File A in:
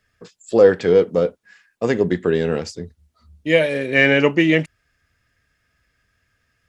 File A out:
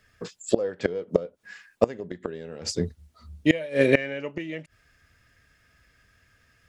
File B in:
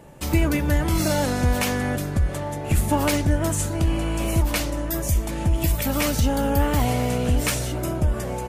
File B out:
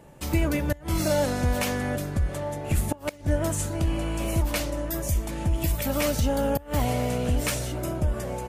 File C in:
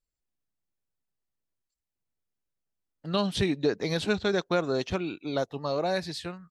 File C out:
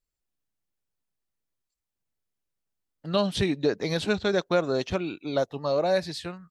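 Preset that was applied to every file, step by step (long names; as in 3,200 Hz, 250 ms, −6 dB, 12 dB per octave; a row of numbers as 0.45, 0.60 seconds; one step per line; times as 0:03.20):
dynamic equaliser 580 Hz, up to +6 dB, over −37 dBFS, Q 5.5
gate with flip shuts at −9 dBFS, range −24 dB
loudness normalisation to −27 LKFS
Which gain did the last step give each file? +5.0, −4.0, +1.0 decibels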